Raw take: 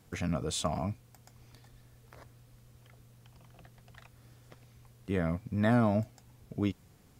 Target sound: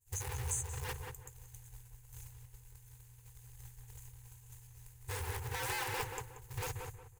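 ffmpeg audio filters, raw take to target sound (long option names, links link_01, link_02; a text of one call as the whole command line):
ffmpeg -i in.wav -filter_complex "[0:a]agate=range=-33dB:threshold=-50dB:ratio=3:detection=peak,afftfilt=real='re*(1-between(b*sr/4096,130,6100))':imag='im*(1-between(b*sr/4096,130,6100))':win_size=4096:overlap=0.75,acrusher=bits=4:mode=log:mix=0:aa=0.000001,equalizer=frequency=150:width=0.32:gain=-11,afftfilt=real='re*lt(hypot(re,im),0.0501)':imag='im*lt(hypot(re,im),0.0501)':win_size=1024:overlap=0.75,acompressor=threshold=-51dB:ratio=6,superequalizer=7b=3.98:8b=0.447:9b=2.51:11b=1.58:12b=1.41,asplit=2[link_01][link_02];[link_02]adelay=182,lowpass=frequency=2100:poles=1,volume=-4dB,asplit=2[link_03][link_04];[link_04]adelay=182,lowpass=frequency=2100:poles=1,volume=0.3,asplit=2[link_05][link_06];[link_06]adelay=182,lowpass=frequency=2100:poles=1,volume=0.3,asplit=2[link_07][link_08];[link_08]adelay=182,lowpass=frequency=2100:poles=1,volume=0.3[link_09];[link_01][link_03][link_05][link_07][link_09]amix=inputs=5:normalize=0,volume=15dB" out.wav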